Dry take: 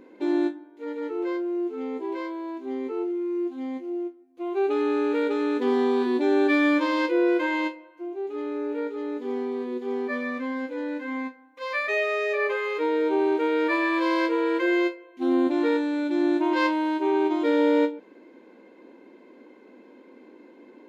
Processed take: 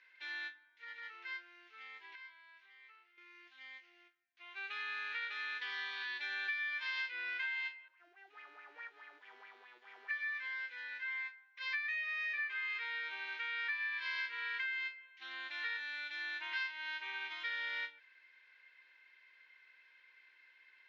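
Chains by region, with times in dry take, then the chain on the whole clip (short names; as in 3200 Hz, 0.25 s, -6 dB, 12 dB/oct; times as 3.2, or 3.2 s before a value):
2.15–3.18 HPF 910 Hz 6 dB/oct + high shelf 4500 Hz -10.5 dB + compressor, threshold -41 dBFS
7.88–10.11 half-wave gain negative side -7 dB + band shelf 2900 Hz -10.5 dB 2.3 oct + LFO bell 4.7 Hz 280–2500 Hz +11 dB
whole clip: Chebyshev band-pass 1700–5600 Hz, order 3; tilt -3.5 dB/oct; compressor 10:1, threshold -41 dBFS; gain +5.5 dB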